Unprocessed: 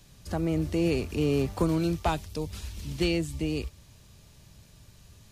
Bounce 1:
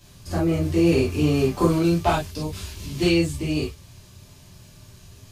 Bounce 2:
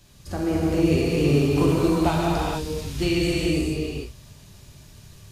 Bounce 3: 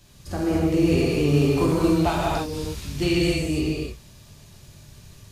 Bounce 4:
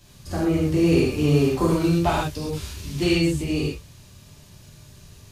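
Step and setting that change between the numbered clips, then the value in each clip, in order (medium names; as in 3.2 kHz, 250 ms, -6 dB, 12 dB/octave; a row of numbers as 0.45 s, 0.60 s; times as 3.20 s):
gated-style reverb, gate: 80 ms, 480 ms, 320 ms, 150 ms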